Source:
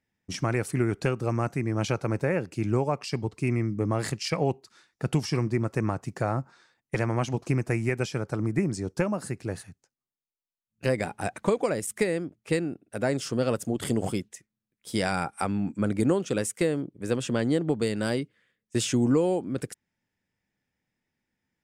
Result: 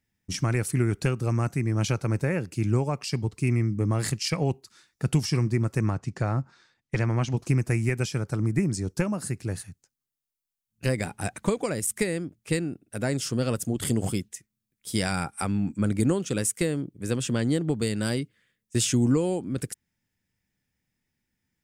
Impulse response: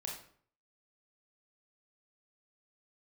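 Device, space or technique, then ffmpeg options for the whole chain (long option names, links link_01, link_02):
smiley-face EQ: -filter_complex "[0:a]asettb=1/sr,asplit=3[link_01][link_02][link_03];[link_01]atrim=end=5.904[link_04];[link_02]atrim=start=5.9:end=7.37,asetpts=PTS-STARTPTS,afade=type=in:duration=0.004:curve=qsin,afade=type=out:start_time=1.466:duration=0.004:curve=qsin,lowpass=5700[link_05];[link_03]atrim=start=7.366[link_06];[link_04][link_05]acrossfade=duration=0.004:curve1=hsin:curve2=qsin[link_07];[link_07][link_06]acrossfade=duration=0.004:curve1=qsin:curve2=hsin,lowshelf=frequency=140:gain=7.5,equalizer=frequency=640:width_type=o:width=1.8:gain=-4.5,highshelf=frequency=6000:gain=8.5"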